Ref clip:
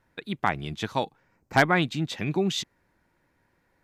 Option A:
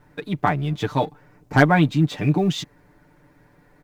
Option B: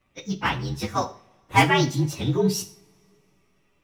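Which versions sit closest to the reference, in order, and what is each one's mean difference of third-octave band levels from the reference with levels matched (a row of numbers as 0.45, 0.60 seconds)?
A, B; 4.0, 7.0 decibels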